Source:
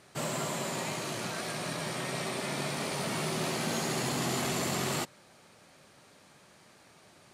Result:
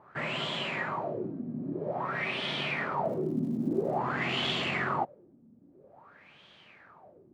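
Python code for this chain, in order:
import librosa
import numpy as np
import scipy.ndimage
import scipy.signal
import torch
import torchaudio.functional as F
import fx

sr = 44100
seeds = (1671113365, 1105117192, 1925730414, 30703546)

y = fx.filter_lfo_lowpass(x, sr, shape='sine', hz=0.5, low_hz=240.0, high_hz=3300.0, q=6.6)
y = fx.dmg_crackle(y, sr, seeds[0], per_s=240.0, level_db=-47.0, at=(3.04, 3.97), fade=0.02)
y = y * 10.0 ** (-2.5 / 20.0)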